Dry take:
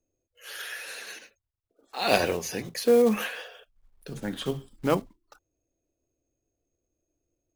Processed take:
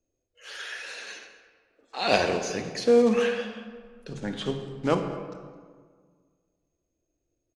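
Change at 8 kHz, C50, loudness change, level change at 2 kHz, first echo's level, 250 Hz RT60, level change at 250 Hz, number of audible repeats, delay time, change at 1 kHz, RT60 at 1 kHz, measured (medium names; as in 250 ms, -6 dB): -2.0 dB, 7.5 dB, +0.5 dB, +1.0 dB, -20.5 dB, 1.9 s, +1.5 dB, 1, 214 ms, +1.0 dB, 1.7 s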